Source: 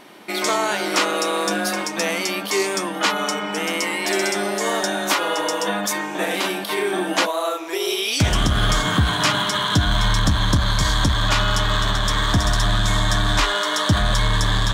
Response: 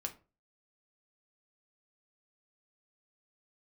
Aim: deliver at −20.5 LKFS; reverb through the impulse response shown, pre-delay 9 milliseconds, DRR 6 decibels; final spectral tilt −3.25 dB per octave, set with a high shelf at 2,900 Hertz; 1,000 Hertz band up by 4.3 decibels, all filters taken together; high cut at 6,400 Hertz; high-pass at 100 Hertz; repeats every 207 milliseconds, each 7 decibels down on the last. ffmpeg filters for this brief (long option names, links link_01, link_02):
-filter_complex "[0:a]highpass=100,lowpass=6400,equalizer=frequency=1000:width_type=o:gain=4.5,highshelf=frequency=2900:gain=5.5,aecho=1:1:207|414|621|828|1035:0.447|0.201|0.0905|0.0407|0.0183,asplit=2[link_01][link_02];[1:a]atrim=start_sample=2205,adelay=9[link_03];[link_02][link_03]afir=irnorm=-1:irlink=0,volume=-5dB[link_04];[link_01][link_04]amix=inputs=2:normalize=0,volume=-4dB"